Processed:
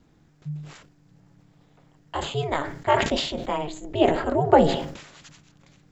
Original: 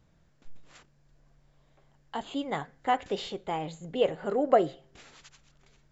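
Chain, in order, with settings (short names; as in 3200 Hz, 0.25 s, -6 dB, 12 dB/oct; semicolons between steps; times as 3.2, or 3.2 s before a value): ring modulator 150 Hz; sustainer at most 71 dB/s; gain +8 dB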